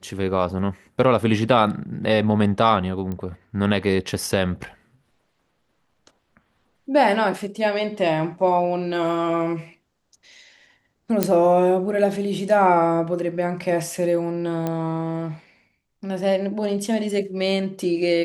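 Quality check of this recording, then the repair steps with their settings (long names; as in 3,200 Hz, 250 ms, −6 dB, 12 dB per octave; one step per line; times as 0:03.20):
0:03.12: click −19 dBFS
0:11.23: click −4 dBFS
0:14.67: click −13 dBFS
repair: click removal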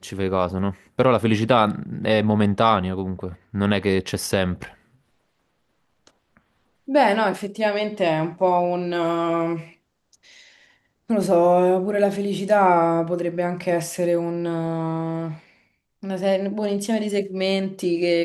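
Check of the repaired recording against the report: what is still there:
none of them is left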